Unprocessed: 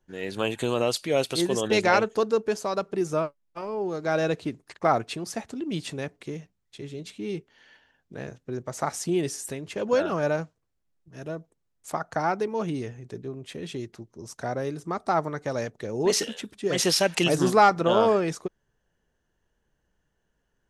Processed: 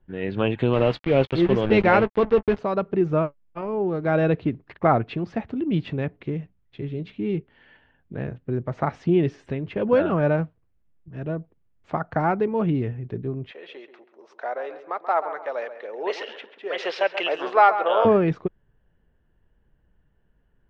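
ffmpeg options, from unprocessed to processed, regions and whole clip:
ffmpeg -i in.wav -filter_complex "[0:a]asettb=1/sr,asplit=3[link_01][link_02][link_03];[link_01]atrim=end=0.734[link_04];[link_02]atrim=start=0.73:end=2.59,asetpts=PTS-STARTPTS,afade=type=in:duration=0.004:curve=qsin,afade=type=out:start_time=1.856:duration=0.004:curve=qsin,acrusher=bits=4:mix=0:aa=0.5,asplit=2[link_05][link_06];[link_06]adelay=15,volume=-14dB[link_07];[link_05][link_07]amix=inputs=2:normalize=0,atrim=end_sample=82026[link_08];[link_03]atrim=start=2.586[link_09];[link_04][link_08]acrossfade=duration=0.004:curve1=hsin:curve2=qsin[link_10];[link_10][link_09]acrossfade=duration=0.004:curve1=qsin:curve2=hsin,asettb=1/sr,asplit=3[link_11][link_12][link_13];[link_11]atrim=end=13.514[link_14];[link_12]atrim=start=13.51:end=18.05,asetpts=PTS-STARTPTS,afade=type=in:duration=0.004:curve=qsin,afade=type=out:start_time=4.536:duration=0.004:curve=qsin,highpass=frequency=530:width=0.5412,highpass=frequency=530:width=1.3066,asplit=2[link_15][link_16];[link_16]adelay=134,lowpass=frequency=2400:poles=1,volume=-10.5dB,asplit=2[link_17][link_18];[link_18]adelay=134,lowpass=frequency=2400:poles=1,volume=0.37,asplit=2[link_19][link_20];[link_20]adelay=134,lowpass=frequency=2400:poles=1,volume=0.37,asplit=2[link_21][link_22];[link_22]adelay=134,lowpass=frequency=2400:poles=1,volume=0.37[link_23];[link_15][link_17][link_19][link_21][link_23]amix=inputs=5:normalize=0,atrim=end_sample=200214[link_24];[link_13]atrim=start=18.046[link_25];[link_14][link_24]acrossfade=duration=0.004:curve1=hsin:curve2=qsin[link_26];[link_26][link_25]acrossfade=duration=0.004:curve1=qsin:curve2=hsin,lowpass=frequency=3000:width=0.5412,lowpass=frequency=3000:width=1.3066,lowshelf=frequency=250:gain=11,volume=1.5dB" out.wav

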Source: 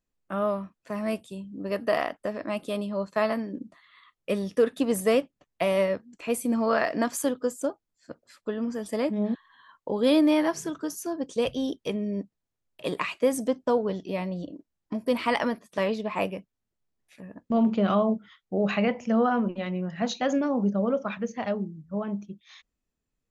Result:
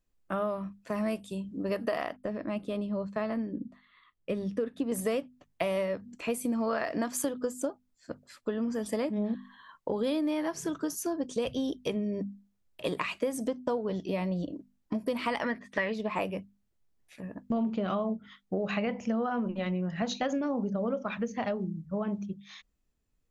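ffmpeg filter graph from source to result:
ffmpeg -i in.wav -filter_complex "[0:a]asettb=1/sr,asplit=3[link_01][link_02][link_03];[link_01]atrim=end=2.164[link_04];[link_02]atrim=start=2.16:end=4.92,asetpts=PTS-STARTPTS,afade=type=in:duration=0.004:curve=qsin,afade=type=out:start_time=2.756:duration=0.004:curve=qsin,lowpass=frequency=1500:poles=1,equalizer=frequency=840:width_type=o:width=2.4:gain=-6[link_05];[link_03]atrim=start=4.916[link_06];[link_04][link_05]acrossfade=duration=0.004:curve1=hsin:curve2=qsin[link_07];[link_07][link_06]acrossfade=duration=0.004:curve1=qsin:curve2=hsin,asettb=1/sr,asplit=3[link_08][link_09][link_10];[link_08]atrim=end=15.434[link_11];[link_09]atrim=start=15.43:end=15.93,asetpts=PTS-STARTPTS,afade=type=in:duration=0.004:curve=qsin,afade=type=out:start_time=0.496:duration=0.004:curve=qsin,lowpass=5500,equalizer=frequency=1900:width_type=o:width=0.46:gain=14.5[link_12];[link_10]atrim=start=15.926[link_13];[link_11][link_12]acrossfade=duration=0.004:curve1=hsin:curve2=qsin[link_14];[link_14][link_13]acrossfade=duration=0.004:curve1=qsin:curve2=hsin,lowshelf=frequency=110:gain=7.5,bandreject=frequency=50:width_type=h:width=6,bandreject=frequency=100:width_type=h:width=6,bandreject=frequency=150:width_type=h:width=6,bandreject=frequency=200:width_type=h:width=6,bandreject=frequency=250:width_type=h:width=6,acompressor=threshold=-29dB:ratio=6,volume=1.5dB" out.wav

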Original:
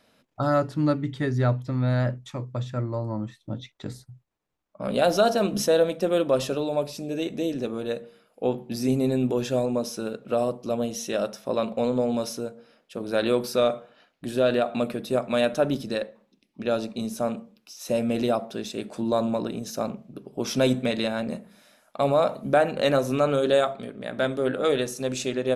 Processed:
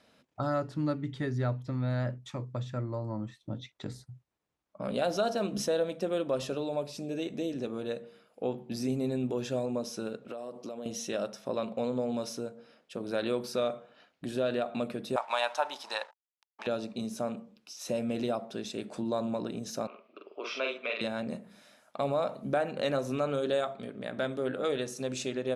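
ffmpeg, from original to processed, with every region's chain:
ffmpeg -i in.wav -filter_complex "[0:a]asettb=1/sr,asplit=3[link_01][link_02][link_03];[link_01]atrim=end=10.264[link_04];[link_02]atrim=start=10.26:end=10.86,asetpts=PTS-STARTPTS,afade=type=in:duration=0.004:curve=qsin,afade=type=out:start_time=0.596:duration=0.004:curve=qsin,highpass=230,acompressor=threshold=-33dB:ratio=10:attack=3.2:release=140:knee=1:detection=peak[link_05];[link_03]atrim=start=10.856[link_06];[link_04][link_05]acrossfade=duration=0.004:curve1=hsin:curve2=qsin[link_07];[link_07][link_06]acrossfade=duration=0.004:curve1=qsin:curve2=hsin,asettb=1/sr,asplit=3[link_08][link_09][link_10];[link_08]atrim=end=15.164[link_11];[link_09]atrim=start=15.16:end=16.67,asetpts=PTS-STARTPTS,afade=type=in:duration=0.004:curve=qsin,afade=type=out:start_time=1.506:duration=0.004:curve=qsin,equalizer=frequency=4500:width=0.31:gain=6.5,aeval=exprs='sgn(val(0))*max(abs(val(0))-0.00562,0)':channel_layout=same,highpass=frequency=890:width_type=q:width=7.5[link_12];[link_10]atrim=start=16.666[link_13];[link_11][link_12]acrossfade=duration=0.004:curve1=hsin:curve2=qsin[link_14];[link_14][link_13]acrossfade=duration=0.004:curve1=qsin:curve2=hsin,asettb=1/sr,asplit=3[link_15][link_16][link_17];[link_15]atrim=end=19.874[link_18];[link_16]atrim=start=19.87:end=21.01,asetpts=PTS-STARTPTS,afade=type=in:duration=0.004:curve=qsin,afade=type=out:start_time=1.136:duration=0.004:curve=qsin,highpass=frequency=450:width=0.5412,highpass=frequency=450:width=1.3066,equalizer=frequency=500:width_type=q:width=4:gain=-5,equalizer=frequency=800:width_type=q:width=4:gain=-9,equalizer=frequency=1200:width_type=q:width=4:gain=8,equalizer=frequency=1700:width_type=q:width=4:gain=-4,equalizer=frequency=2500:width_type=q:width=4:gain=9,equalizer=frequency=3700:width_type=q:width=4:gain=-4,lowpass=frequency=4100:width=0.5412,lowpass=frequency=4100:width=1.3066,asplit=2[link_19][link_20];[link_20]adelay=45,volume=-3dB[link_21];[link_19][link_21]amix=inputs=2:normalize=0,atrim=end_sample=50274[link_22];[link_17]atrim=start=21.006[link_23];[link_18][link_22]acrossfade=duration=0.004:curve1=hsin:curve2=qsin[link_24];[link_24][link_23]acrossfade=duration=0.004:curve1=qsin:curve2=hsin,lowpass=9800,acompressor=threshold=-37dB:ratio=1.5,highpass=42,volume=-1.5dB" out.wav

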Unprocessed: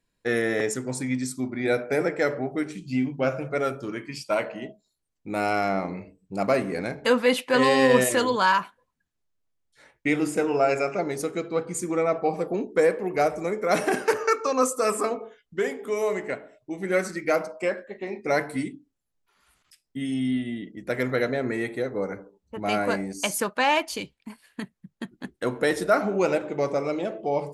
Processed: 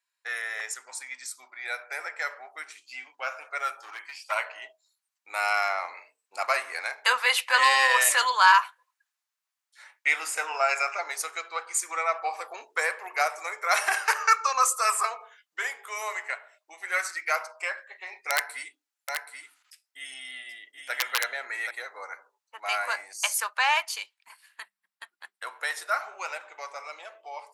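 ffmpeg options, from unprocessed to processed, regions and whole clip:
ffmpeg -i in.wav -filter_complex "[0:a]asettb=1/sr,asplit=3[link_01][link_02][link_03];[link_01]atrim=end=3.774[link_04];[link_02]atrim=start=3.77:end=4.32,asetpts=PTS-STARTPTS,afade=type=in:duration=0.004:curve=qsin,afade=type=out:start_time=0.546:duration=0.004:curve=qsin,equalizer=frequency=810:width=6.4:gain=13.5,acrossover=split=3000[link_05][link_06];[link_06]acompressor=threshold=-48dB:ratio=4:attack=1:release=60[link_07];[link_05][link_07]amix=inputs=2:normalize=0,aeval=exprs='clip(val(0),-1,0.0282)':channel_layout=same[link_08];[link_03]atrim=start=4.316[link_09];[link_04][link_08]acrossfade=duration=0.004:curve1=hsin:curve2=qsin[link_10];[link_10][link_09]acrossfade=duration=0.004:curve1=qsin:curve2=hsin,asettb=1/sr,asplit=3[link_11][link_12][link_13];[link_11]atrim=end=18.304[link_14];[link_12]atrim=start=18.3:end=21.71,asetpts=PTS-STARTPTS,afade=type=in:duration=0.004:curve=qsin,afade=type=out:start_time=3.406:duration=0.004:curve=qsin,bandreject=frequency=1100:width=8.3,aeval=exprs='(mod(4.22*val(0)+1,2)-1)/4.22':channel_layout=same,aecho=1:1:778:0.501,atrim=end_sample=150381[link_15];[link_13]atrim=start=21.706[link_16];[link_14][link_15]acrossfade=duration=0.004:curve1=hsin:curve2=qsin[link_17];[link_17][link_16]acrossfade=duration=0.004:curve1=qsin:curve2=hsin,asettb=1/sr,asplit=3[link_18][link_19][link_20];[link_18]atrim=end=24.614[link_21];[link_19]atrim=start=24.61:end=25.6,asetpts=PTS-STARTPTS,afade=type=in:duration=0.004:curve=qsin,afade=type=out:start_time=0.986:duration=0.004:curve=qsin,bandreject=frequency=6500:width=6,bandreject=frequency=100.3:width_type=h:width=4,bandreject=frequency=200.6:width_type=h:width=4[link_22];[link_20]atrim=start=25.596[link_23];[link_21][link_22]acrossfade=duration=0.004:curve1=hsin:curve2=qsin[link_24];[link_24][link_23]acrossfade=duration=0.004:curve1=qsin:curve2=hsin,highpass=frequency=920:width=0.5412,highpass=frequency=920:width=1.3066,equalizer=frequency=3300:width_type=o:width=0.26:gain=-2.5,dynaudnorm=framelen=730:gausssize=11:maxgain=8dB,volume=-2dB" out.wav

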